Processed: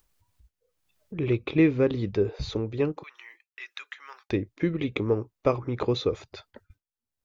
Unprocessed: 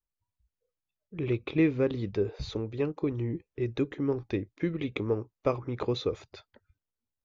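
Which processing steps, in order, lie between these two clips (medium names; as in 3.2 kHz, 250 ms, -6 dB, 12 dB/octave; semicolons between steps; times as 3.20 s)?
3.03–4.30 s: high-pass 1.3 kHz 24 dB/octave; expander -57 dBFS; upward compressor, threshold -38 dBFS; trim +4 dB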